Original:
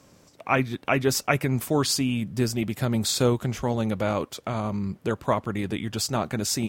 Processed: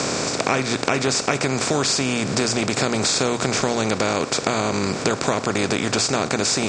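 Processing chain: spectral levelling over time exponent 0.4; treble shelf 5 kHz +8 dB; compression, threshold -22 dBFS, peak gain reduction 9.5 dB; steep low-pass 8 kHz 48 dB/octave; bass shelf 64 Hz -11 dB; hum notches 60/120 Hz; trim +5.5 dB

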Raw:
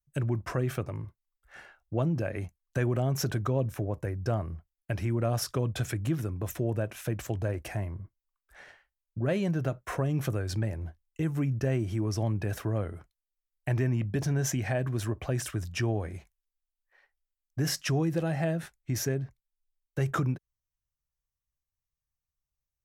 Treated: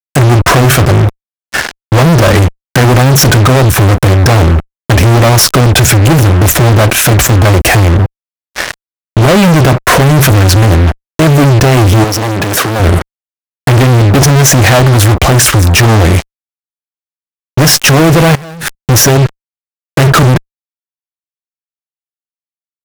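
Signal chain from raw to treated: expander -55 dBFS; fuzz box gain 50 dB, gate -49 dBFS; 12.04–12.80 s: high-pass 160 Hz 12 dB/octave; 18.35–18.75 s: compressor with a negative ratio -25 dBFS, ratio -0.5; loudness maximiser +10 dB; trim -1 dB

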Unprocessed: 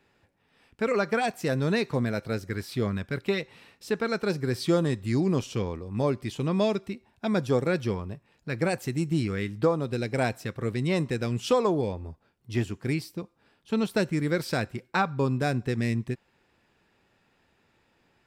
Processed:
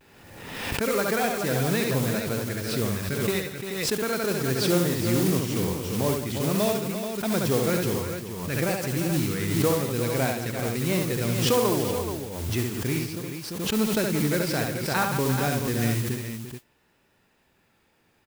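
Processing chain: vibrato 0.49 Hz 40 cents; modulation noise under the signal 10 dB; multi-tap echo 69/173/345/430 ms -4/-14/-10/-8 dB; swell ahead of each attack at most 42 dB/s; trim -1.5 dB

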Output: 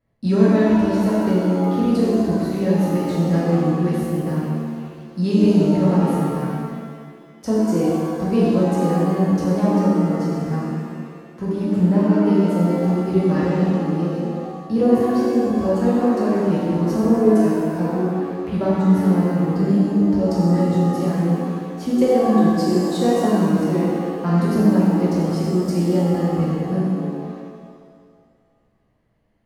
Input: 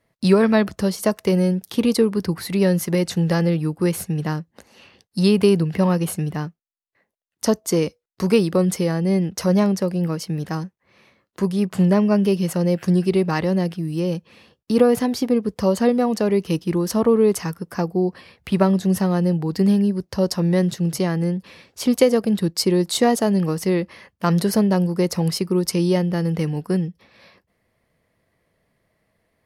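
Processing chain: tilt EQ -2.5 dB/octave; pitch-shifted reverb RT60 1.8 s, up +7 st, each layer -8 dB, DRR -7 dB; trim -11 dB

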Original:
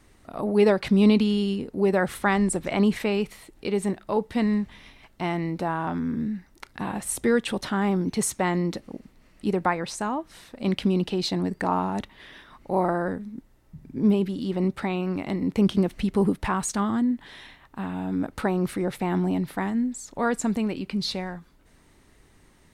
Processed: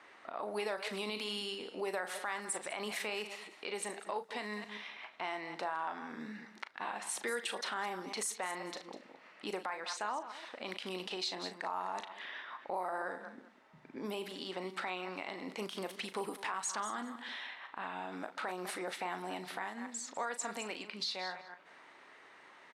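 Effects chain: chunks repeated in reverse 129 ms, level -14 dB; level-controlled noise filter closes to 2.3 kHz, open at -18 dBFS; high-pass 750 Hz 12 dB/octave; on a send: delay 199 ms -20 dB; on the sum: compression 2:1, threshold -54 dBFS, peak gain reduction 18.5 dB; treble shelf 8.2 kHz +6.5 dB; doubling 38 ms -11 dB; peak limiter -34.5 dBFS, peak gain reduction 8.5 dB; trim +8 dB

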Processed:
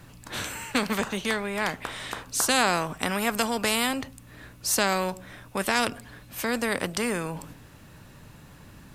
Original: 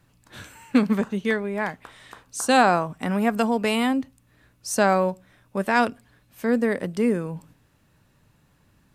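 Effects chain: spectrum-flattening compressor 2:1; trim -1.5 dB

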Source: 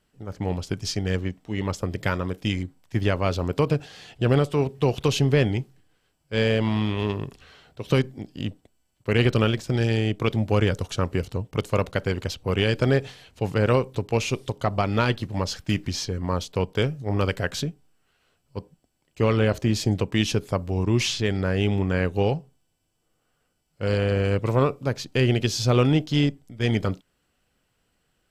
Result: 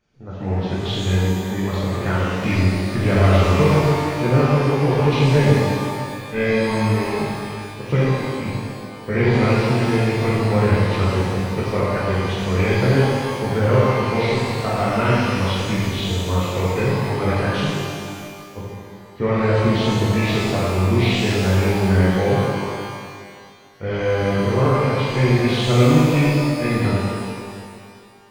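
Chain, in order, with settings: knee-point frequency compression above 1.5 kHz 1.5:1; 2.42–3.81 s: power-law waveshaper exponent 0.7; pitch-shifted reverb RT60 2.1 s, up +12 st, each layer -8 dB, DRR -7 dB; trim -3 dB

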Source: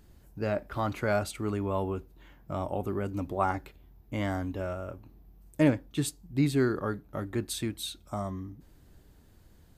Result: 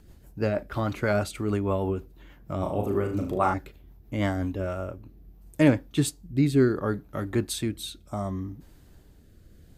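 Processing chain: rotary cabinet horn 6.3 Hz, later 0.7 Hz, at 4.09 s; 2.59–3.54 s: flutter echo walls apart 6.5 m, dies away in 0.45 s; trim +6 dB

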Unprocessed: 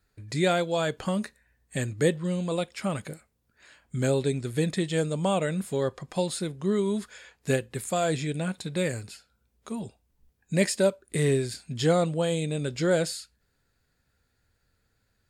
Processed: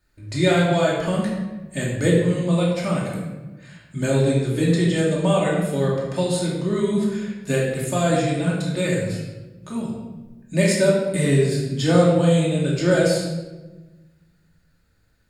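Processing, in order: simulated room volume 640 m³, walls mixed, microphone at 2.6 m

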